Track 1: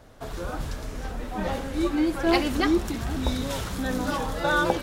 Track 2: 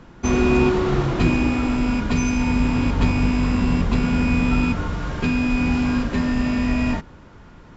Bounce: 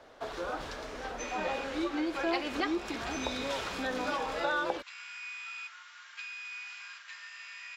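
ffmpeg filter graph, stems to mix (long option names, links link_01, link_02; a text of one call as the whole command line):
ffmpeg -i stem1.wav -i stem2.wav -filter_complex "[0:a]acrossover=split=320 5900:gain=0.126 1 0.141[link_01][link_02][link_03];[link_01][link_02][link_03]amix=inputs=3:normalize=0,volume=0.5dB[link_04];[1:a]highpass=frequency=1500:width=0.5412,highpass=frequency=1500:width=1.3066,adelay=950,volume=-11.5dB[link_05];[link_04][link_05]amix=inputs=2:normalize=0,acompressor=threshold=-31dB:ratio=2.5" out.wav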